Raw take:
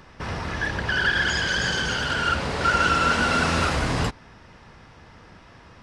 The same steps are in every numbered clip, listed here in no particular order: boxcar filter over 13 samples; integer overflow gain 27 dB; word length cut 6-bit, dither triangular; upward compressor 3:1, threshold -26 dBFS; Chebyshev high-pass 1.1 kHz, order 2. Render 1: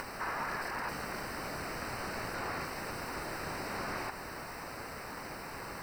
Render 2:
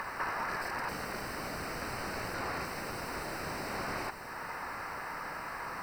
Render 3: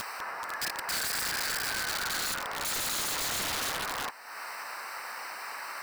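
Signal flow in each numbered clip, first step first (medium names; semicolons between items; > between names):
Chebyshev high-pass > integer overflow > word length cut > upward compressor > boxcar filter; Chebyshev high-pass > integer overflow > upward compressor > word length cut > boxcar filter; word length cut > boxcar filter > upward compressor > Chebyshev high-pass > integer overflow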